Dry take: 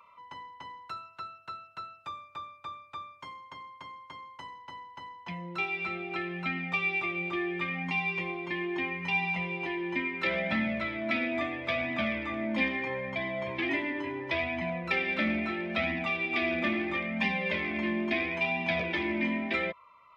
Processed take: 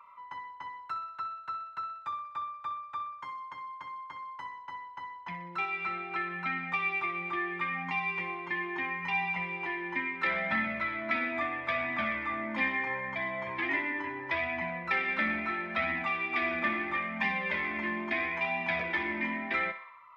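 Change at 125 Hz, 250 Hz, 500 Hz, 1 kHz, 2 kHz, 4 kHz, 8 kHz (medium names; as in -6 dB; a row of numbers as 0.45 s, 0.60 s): -6.5 dB, -6.0 dB, -5.0 dB, +3.5 dB, +0.5 dB, -5.5 dB, no reading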